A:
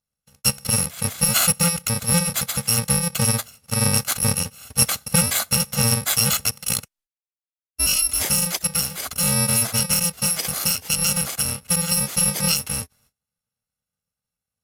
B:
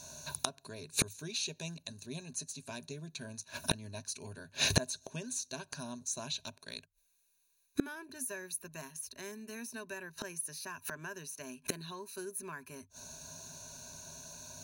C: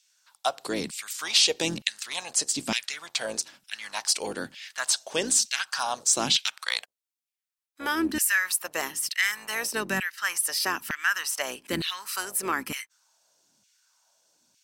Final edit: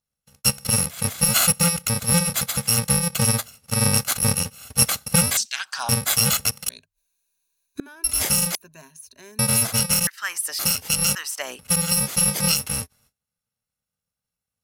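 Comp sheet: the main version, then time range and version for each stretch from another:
A
5.37–5.89 from C
6.69–8.04 from B
8.55–9.39 from B
10.07–10.59 from C
11.15–11.59 from C

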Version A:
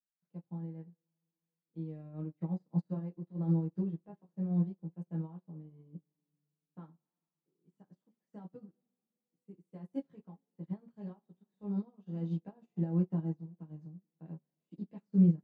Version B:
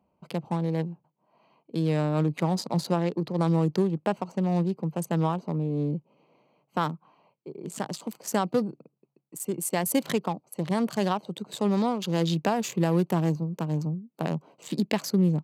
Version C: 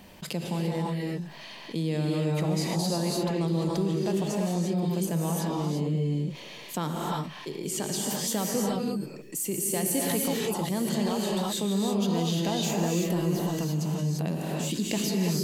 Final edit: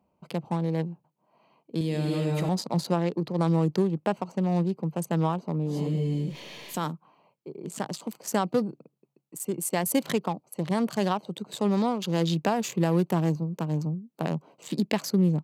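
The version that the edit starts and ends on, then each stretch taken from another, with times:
B
1.81–2.49 from C
5.73–6.85 from C, crossfade 0.16 s
not used: A

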